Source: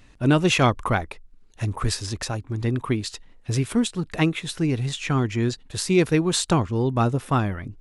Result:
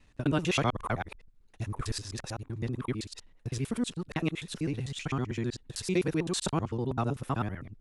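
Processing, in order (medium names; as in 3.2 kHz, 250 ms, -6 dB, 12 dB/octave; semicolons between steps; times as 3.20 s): time reversed locally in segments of 64 ms; trim -9 dB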